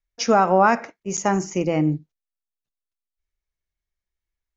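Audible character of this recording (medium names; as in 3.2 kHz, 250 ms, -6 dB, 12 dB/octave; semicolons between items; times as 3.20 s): noise floor -88 dBFS; spectral tilt -5.0 dB/octave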